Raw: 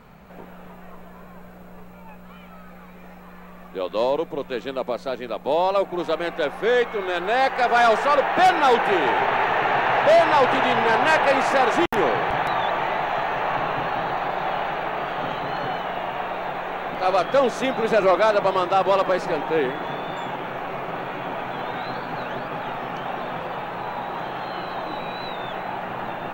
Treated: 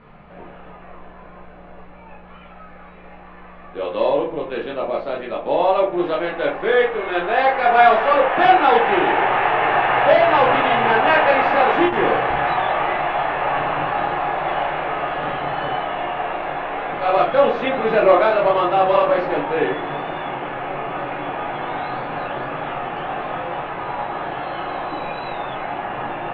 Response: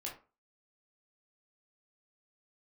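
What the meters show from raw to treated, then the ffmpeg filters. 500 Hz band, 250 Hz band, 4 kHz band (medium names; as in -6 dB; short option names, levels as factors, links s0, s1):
+3.5 dB, +3.0 dB, +0.5 dB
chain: -filter_complex "[0:a]lowpass=f=3300:w=0.5412,lowpass=f=3300:w=1.3066[s0];[1:a]atrim=start_sample=2205[s1];[s0][s1]afir=irnorm=-1:irlink=0,volume=1.68"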